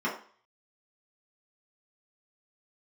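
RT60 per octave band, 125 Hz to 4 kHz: 0.30, 0.40, 0.45, 0.50, 0.45, 0.45 s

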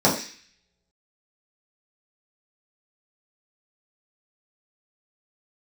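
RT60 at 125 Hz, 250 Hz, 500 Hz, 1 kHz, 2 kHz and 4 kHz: 0.40, 0.45, 0.40, 0.45, 0.75, 0.70 s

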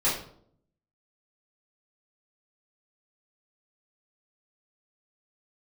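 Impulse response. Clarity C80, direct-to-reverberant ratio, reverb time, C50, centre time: 9.0 dB, -10.5 dB, 0.65 s, 4.5 dB, 39 ms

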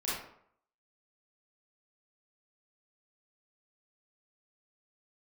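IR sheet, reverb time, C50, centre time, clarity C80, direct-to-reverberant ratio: 0.65 s, -1.0 dB, 64 ms, 5.0 dB, -9.5 dB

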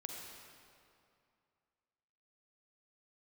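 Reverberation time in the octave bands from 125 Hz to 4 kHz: 2.6, 2.5, 2.4, 2.5, 2.1, 1.8 s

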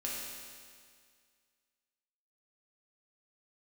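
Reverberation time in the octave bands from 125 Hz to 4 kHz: 2.0, 2.0, 2.0, 2.0, 2.0, 2.0 s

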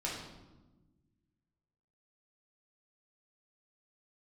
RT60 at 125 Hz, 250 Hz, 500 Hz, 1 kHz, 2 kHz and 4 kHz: 2.1, 1.9, 1.3, 1.0, 0.80, 0.75 s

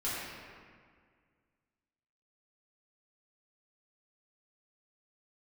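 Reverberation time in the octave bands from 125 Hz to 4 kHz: 2.3, 2.2, 1.9, 1.9, 1.8, 1.2 s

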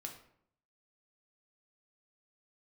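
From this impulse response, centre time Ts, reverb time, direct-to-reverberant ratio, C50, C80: 19 ms, 0.65 s, 1.5 dB, 8.0 dB, 11.5 dB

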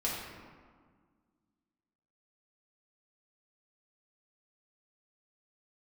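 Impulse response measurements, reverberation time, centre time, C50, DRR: 1.7 s, 84 ms, 0.5 dB, -6.0 dB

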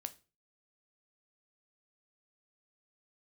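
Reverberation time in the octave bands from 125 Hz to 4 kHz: 0.50, 0.40, 0.35, 0.30, 0.30, 0.30 s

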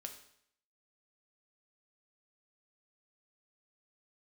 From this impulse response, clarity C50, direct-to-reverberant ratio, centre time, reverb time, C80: 9.5 dB, 4.0 dB, 16 ms, 0.70 s, 12.5 dB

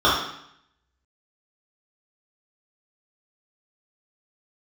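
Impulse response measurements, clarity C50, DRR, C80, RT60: 1.5 dB, -9.5 dB, 6.0 dB, 0.70 s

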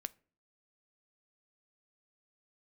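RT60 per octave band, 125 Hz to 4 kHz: 0.55, 0.60, 0.45, 0.40, 0.35, 0.25 s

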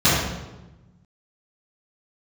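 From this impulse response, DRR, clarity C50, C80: -14.0 dB, -0.5 dB, 2.0 dB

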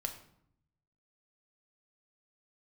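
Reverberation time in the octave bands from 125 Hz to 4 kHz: 1.3, 1.0, 0.70, 0.70, 0.55, 0.50 s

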